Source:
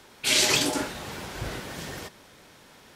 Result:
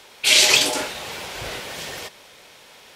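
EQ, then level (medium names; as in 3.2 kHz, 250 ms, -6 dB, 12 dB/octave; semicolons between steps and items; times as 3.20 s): high-order bell 1 kHz +9.5 dB 2.8 oct; resonant high shelf 2.3 kHz +9.5 dB, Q 1.5; -4.0 dB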